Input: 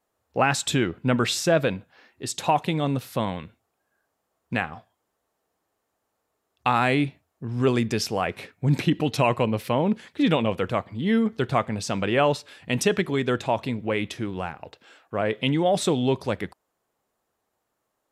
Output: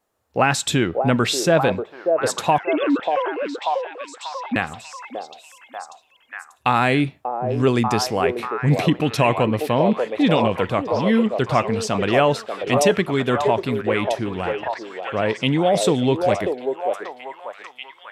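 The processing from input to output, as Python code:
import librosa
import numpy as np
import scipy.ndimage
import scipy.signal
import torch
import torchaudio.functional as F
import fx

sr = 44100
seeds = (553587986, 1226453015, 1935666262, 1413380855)

p1 = fx.sine_speech(x, sr, at=(2.58, 4.56))
p2 = p1 + fx.echo_stepped(p1, sr, ms=589, hz=540.0, octaves=0.7, feedback_pct=70, wet_db=-1, dry=0)
y = F.gain(torch.from_numpy(p2), 3.5).numpy()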